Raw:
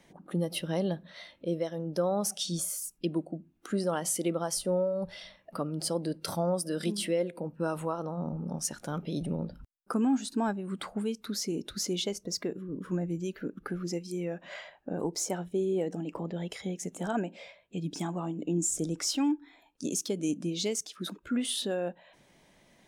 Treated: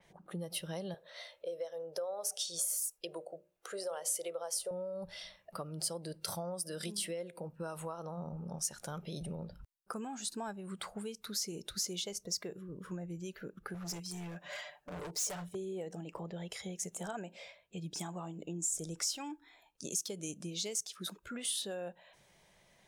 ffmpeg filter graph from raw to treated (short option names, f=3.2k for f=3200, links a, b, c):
-filter_complex "[0:a]asettb=1/sr,asplit=3[a][b][c];[a]atrim=end=0.944[d];[b]atrim=start=0.94:end=4.71,asetpts=PTS-STARTPTS,afade=t=in:d=0.004:c=qsin,afade=t=out:st=3.766:d=0.004:c=qsin,lowshelf=f=340:t=q:w=3:g=-12.5,bandreject=f=60:t=h:w=6,bandreject=f=120:t=h:w=6,bandreject=f=180:t=h:w=6,bandreject=f=240:t=h:w=6,bandreject=f=300:t=h:w=6,bandreject=f=360:t=h:w=6,bandreject=f=420:t=h:w=6,bandreject=f=480:t=h:w=6,bandreject=f=540:t=h:w=6,bandreject=f=600:t=h:w=6[e];[c]atrim=start=4.706[f];[d][e]acrossfade=d=0.004:c1=hsin:c2=qsin[g];[g][f]acrossfade=d=0.004:c1=qsin:c2=hsin,asettb=1/sr,asplit=3[h][i][j];[h]atrim=end=13.744[k];[i]atrim=start=13.74:end=15.55,asetpts=PTS-STARTPTS,afade=t=in:d=0.004:c=qsin,afade=t=out:st=1.806:d=0.004:c=qsin,highpass=f=54:p=1,aecho=1:1:6.8:0.87,atrim=end_sample=79821,volume=34dB,asoftclip=hard,volume=-34dB[l];[j]atrim=start=15.546[m];[k][l]acrossfade=d=0.004:c1=hsin:c2=qsin[n];[n][m]acrossfade=d=0.004:c1=qsin:c2=hsin,equalizer=f=270:w=2.6:g=-14.5,acompressor=threshold=-35dB:ratio=4,adynamicequalizer=threshold=0.002:dfrequency=4300:dqfactor=0.7:tfrequency=4300:tqfactor=0.7:attack=5:release=100:ratio=0.375:range=3.5:mode=boostabove:tftype=highshelf,volume=-3dB"